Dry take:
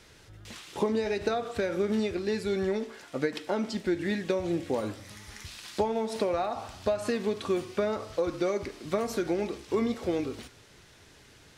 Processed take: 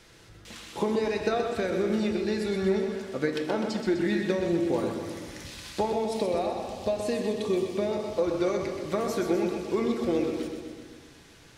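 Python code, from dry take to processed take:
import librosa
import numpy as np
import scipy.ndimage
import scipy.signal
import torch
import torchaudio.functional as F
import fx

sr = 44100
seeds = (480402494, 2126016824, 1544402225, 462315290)

y = fx.peak_eq(x, sr, hz=1400.0, db=-11.5, octaves=0.65, at=(5.9, 8.17))
y = fx.echo_feedback(y, sr, ms=126, feedback_pct=58, wet_db=-7)
y = fx.room_shoebox(y, sr, seeds[0], volume_m3=1200.0, walls='mixed', distance_m=0.73)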